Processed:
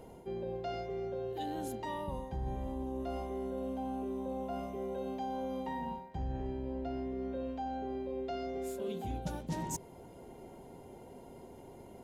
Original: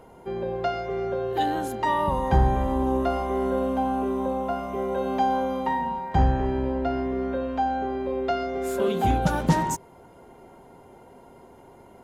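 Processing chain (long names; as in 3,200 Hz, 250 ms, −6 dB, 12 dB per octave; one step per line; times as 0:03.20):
parametric band 1,300 Hz −10.5 dB 1.3 octaves
reversed playback
downward compressor 6 to 1, threshold −36 dBFS, peak gain reduction 19 dB
reversed playback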